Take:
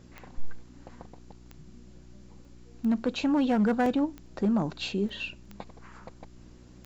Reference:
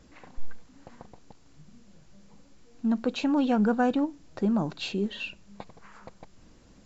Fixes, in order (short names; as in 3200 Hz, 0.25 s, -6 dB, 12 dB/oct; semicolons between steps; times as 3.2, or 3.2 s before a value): clip repair -19 dBFS; de-click; de-hum 60.8 Hz, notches 6; interpolate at 2.45/3.86/4.26/5.09/5.45, 2.7 ms